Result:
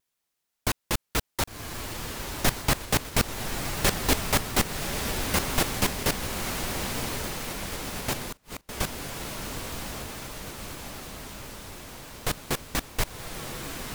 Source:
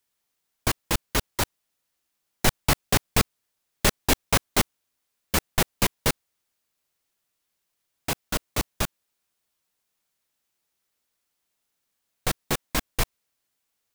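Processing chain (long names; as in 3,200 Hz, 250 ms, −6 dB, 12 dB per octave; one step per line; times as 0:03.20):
feedback delay with all-pass diffusion 1,092 ms, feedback 69%, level −4.5 dB
0:08.18–0:08.69: gate with flip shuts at −20 dBFS, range −33 dB
pitch modulation by a square or saw wave saw down 6.9 Hz, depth 160 cents
level −2.5 dB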